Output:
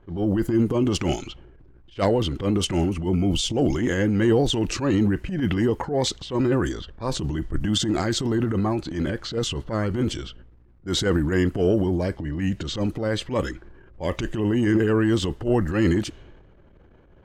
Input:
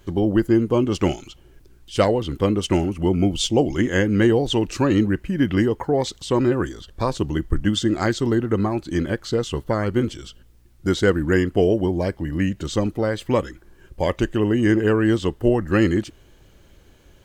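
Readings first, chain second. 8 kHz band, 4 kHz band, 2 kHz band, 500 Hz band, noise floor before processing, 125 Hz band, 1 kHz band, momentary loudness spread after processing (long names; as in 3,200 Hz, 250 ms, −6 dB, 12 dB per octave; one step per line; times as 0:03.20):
+1.5 dB, +1.0 dB, −4.0 dB, −4.0 dB, −52 dBFS, −1.5 dB, −3.5 dB, 8 LU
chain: low-pass that shuts in the quiet parts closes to 1,300 Hz, open at −17.5 dBFS
transient designer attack −11 dB, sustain +7 dB
level −1.5 dB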